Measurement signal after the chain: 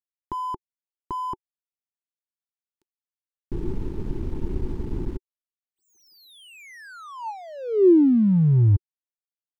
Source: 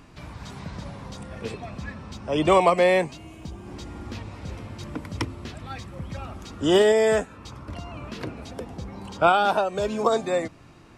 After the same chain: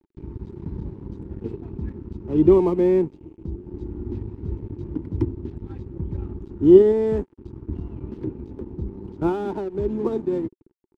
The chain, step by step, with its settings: RIAA curve playback; crossover distortion -31.5 dBFS; resonant low shelf 450 Hz +9.5 dB, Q 1.5; small resonant body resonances 370/880 Hz, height 13 dB, ringing for 30 ms; trim -15.5 dB

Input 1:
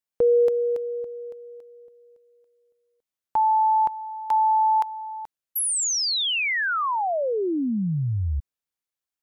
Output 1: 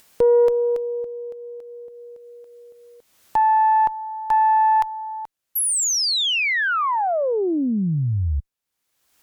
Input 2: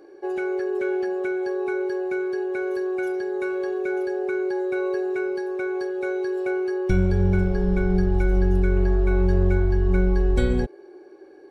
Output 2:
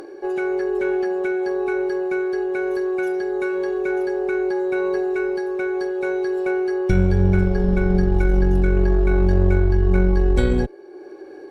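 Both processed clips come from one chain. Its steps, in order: upward compressor, threshold -34 dBFS; Chebyshev shaper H 4 -22 dB, 5 -33 dB, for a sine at -6.5 dBFS; trim +2.5 dB

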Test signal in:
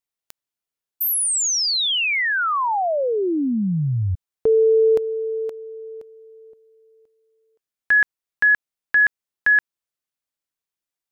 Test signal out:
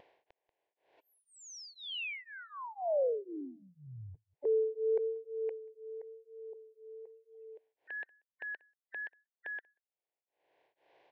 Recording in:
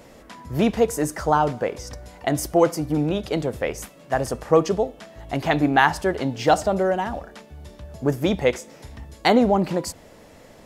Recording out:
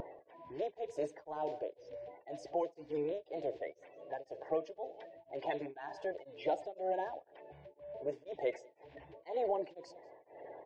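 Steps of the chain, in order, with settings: coarse spectral quantiser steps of 30 dB; high-pass 250 Hz 12 dB/octave; level-controlled noise filter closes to 1.8 kHz, open at -19 dBFS; bass shelf 490 Hz -11 dB; compression 5:1, threshold -24 dBFS; transient shaper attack -4 dB, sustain +1 dB; upward compressor 4:1, threshold -38 dBFS; static phaser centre 530 Hz, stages 4; wow and flutter 1 Hz 17 cents; tape spacing loss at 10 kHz 39 dB; echo from a far wall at 32 m, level -22 dB; tremolo of two beating tones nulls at 2 Hz; trim +1 dB

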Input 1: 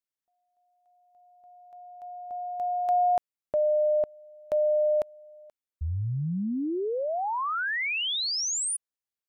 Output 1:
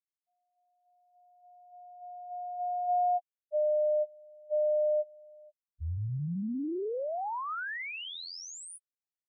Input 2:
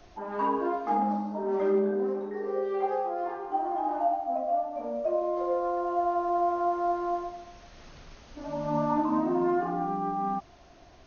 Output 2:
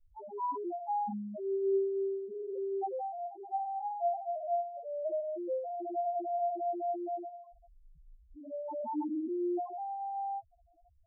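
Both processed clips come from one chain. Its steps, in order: loudest bins only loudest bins 1

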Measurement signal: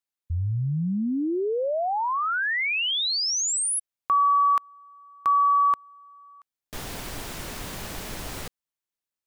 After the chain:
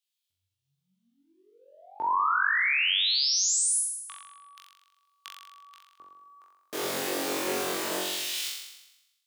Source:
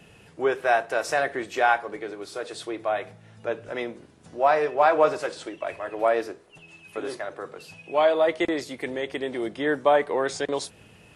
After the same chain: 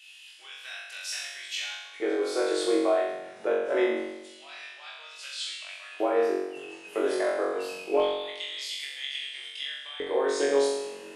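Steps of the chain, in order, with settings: compression 6:1, threshold -30 dBFS; LFO high-pass square 0.25 Hz 360–3200 Hz; on a send: flutter echo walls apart 3.7 m, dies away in 0.97 s

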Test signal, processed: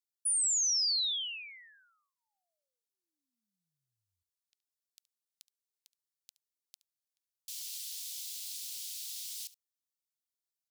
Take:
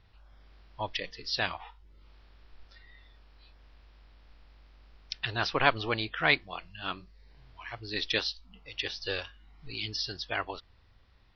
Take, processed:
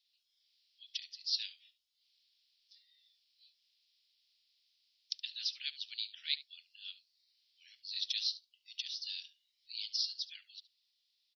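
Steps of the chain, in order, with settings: inverse Chebyshev high-pass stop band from 1.1 kHz, stop band 60 dB; on a send: delay 71 ms -18 dB

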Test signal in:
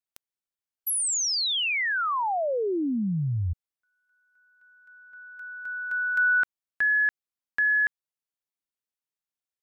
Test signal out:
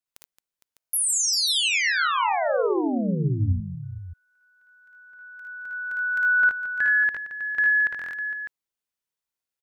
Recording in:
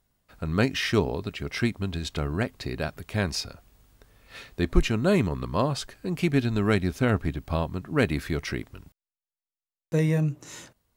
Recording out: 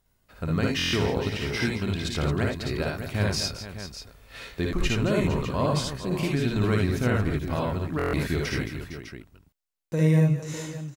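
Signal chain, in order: peak limiter -17.5 dBFS; multi-tap echo 55/57/76/221/459/603 ms -7.5/-3.5/-4/-11/-12/-10.5 dB; buffer glitch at 0.77/7.97 s, samples 1024, times 6

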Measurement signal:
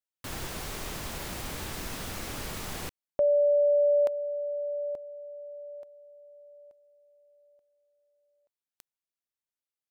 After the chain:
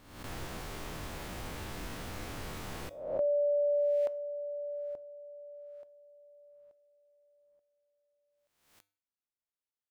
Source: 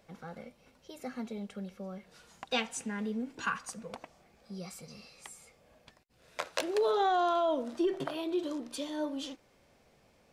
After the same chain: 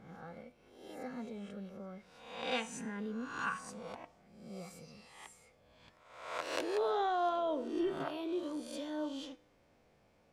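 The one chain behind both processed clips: reverse spectral sustain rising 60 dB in 0.80 s; treble shelf 3.4 kHz -7.5 dB; feedback comb 100 Hz, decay 0.46 s, harmonics odd, mix 50%

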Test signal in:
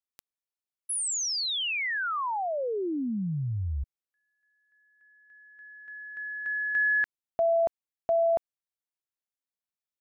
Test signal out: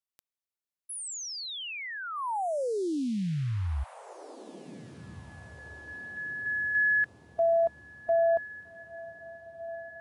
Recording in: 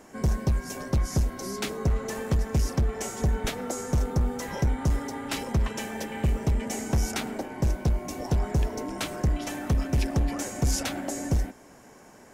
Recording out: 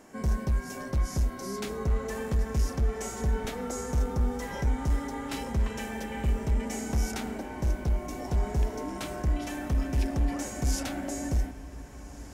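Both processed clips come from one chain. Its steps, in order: harmonic-percussive split percussive -8 dB; echo that smears into a reverb 1709 ms, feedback 45%, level -16 dB

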